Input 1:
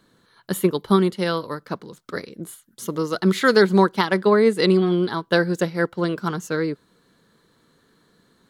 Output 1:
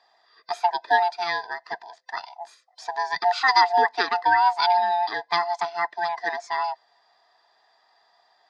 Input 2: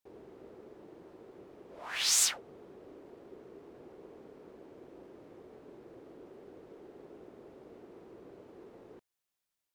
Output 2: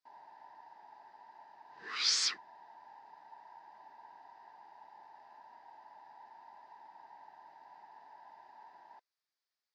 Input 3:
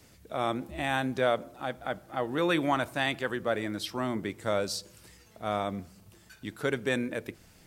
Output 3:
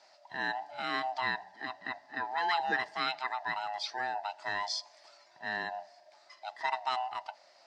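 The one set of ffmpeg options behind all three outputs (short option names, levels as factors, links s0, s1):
-af "afftfilt=real='real(if(lt(b,1008),b+24*(1-2*mod(floor(b/24),2)),b),0)':imag='imag(if(lt(b,1008),b+24*(1-2*mod(floor(b/24),2)),b),0)':win_size=2048:overlap=0.75,highpass=440,equalizer=f=500:t=q:w=4:g=-5,equalizer=f=1800:t=q:w=4:g=4,equalizer=f=2900:t=q:w=4:g=-5,equalizer=f=4800:t=q:w=4:g=8,lowpass=f=5700:w=0.5412,lowpass=f=5700:w=1.3066,volume=0.75"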